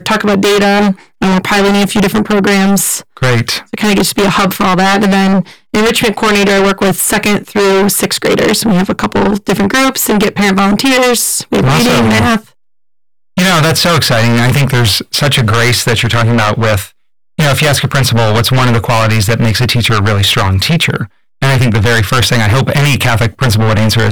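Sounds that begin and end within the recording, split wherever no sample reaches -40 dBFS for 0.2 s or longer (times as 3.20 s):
13.37–16.91 s
17.38–21.08 s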